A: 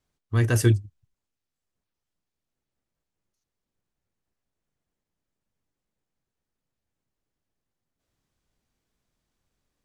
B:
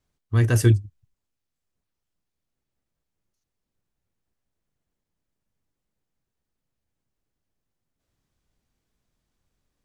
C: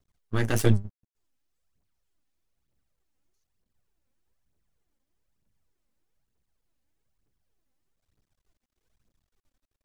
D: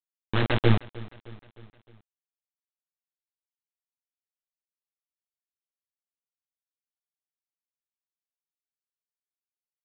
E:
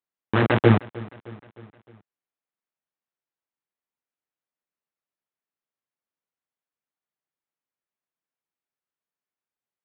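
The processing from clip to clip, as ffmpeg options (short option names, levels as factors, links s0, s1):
-af "lowshelf=f=180:g=4"
-af "aphaser=in_gain=1:out_gain=1:delay=4:decay=0.57:speed=1.1:type=triangular,aeval=exprs='max(val(0),0)':c=same"
-af "aresample=8000,acrusher=bits=3:mix=0:aa=0.000001,aresample=44100,aecho=1:1:308|616|924|1232:0.0944|0.0519|0.0286|0.0157"
-af "highpass=120,lowpass=2100,volume=2.24"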